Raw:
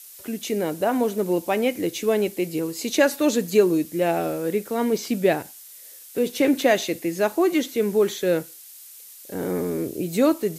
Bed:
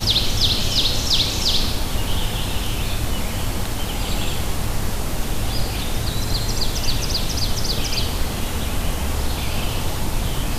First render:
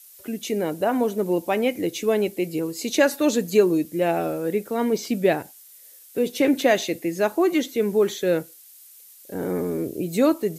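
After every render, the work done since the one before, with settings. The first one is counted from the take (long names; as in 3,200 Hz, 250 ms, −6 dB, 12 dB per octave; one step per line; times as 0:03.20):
broadband denoise 6 dB, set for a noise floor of −44 dBFS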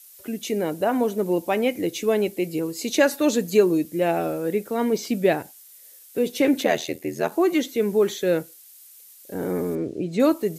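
0:06.63–0:07.32: ring modulation 41 Hz
0:09.75–0:10.20: high-frequency loss of the air 110 metres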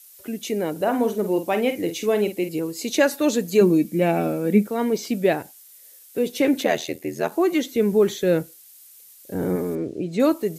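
0:00.71–0:02.49: double-tracking delay 48 ms −9 dB
0:03.61–0:04.67: hollow resonant body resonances 210/2,300 Hz, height 15 dB, ringing for 60 ms
0:07.71–0:09.56: low-shelf EQ 180 Hz +11 dB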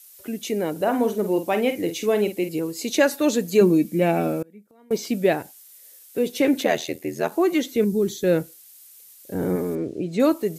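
0:04.42–0:04.91: gate with flip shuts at −24 dBFS, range −30 dB
0:07.84–0:08.24: flat-topped bell 1,200 Hz −13.5 dB 2.9 octaves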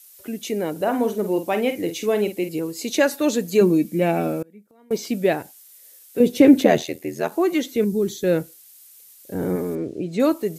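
0:06.20–0:06.83: low-shelf EQ 480 Hz +12 dB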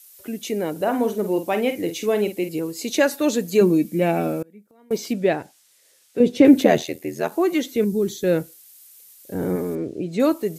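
0:05.13–0:06.45: high-frequency loss of the air 60 metres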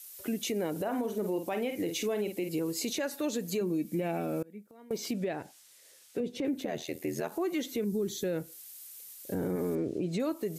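downward compressor 20 to 1, threshold −26 dBFS, peak gain reduction 20.5 dB
brickwall limiter −23.5 dBFS, peak gain reduction 6.5 dB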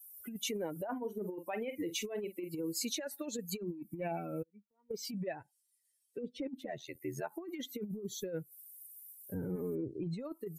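spectral dynamics exaggerated over time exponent 2
compressor whose output falls as the input rises −37 dBFS, ratio −0.5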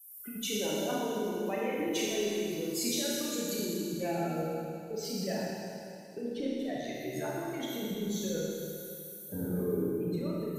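four-comb reverb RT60 2.7 s, combs from 26 ms, DRR −5.5 dB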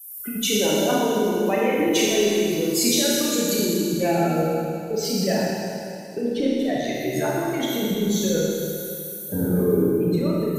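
level +12 dB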